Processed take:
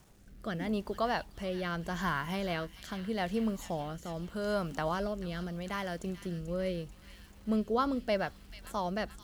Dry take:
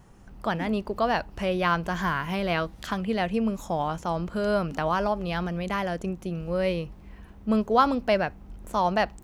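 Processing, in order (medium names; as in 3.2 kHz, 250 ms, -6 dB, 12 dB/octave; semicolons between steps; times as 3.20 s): treble shelf 4.7 kHz +6.5 dB; band-stop 2.5 kHz, Q 9.3; bit crusher 9-bit; rotary cabinet horn 0.8 Hz; on a send: feedback echo behind a high-pass 438 ms, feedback 61%, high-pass 2.4 kHz, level -9.5 dB; on the sum: trim -5.5 dB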